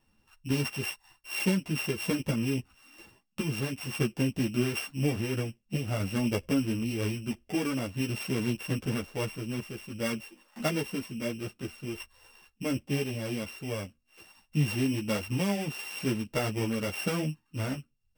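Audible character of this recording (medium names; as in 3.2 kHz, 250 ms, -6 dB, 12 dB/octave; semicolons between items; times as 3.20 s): a buzz of ramps at a fixed pitch in blocks of 16 samples; tremolo saw down 0.5 Hz, depth 35%; a shimmering, thickened sound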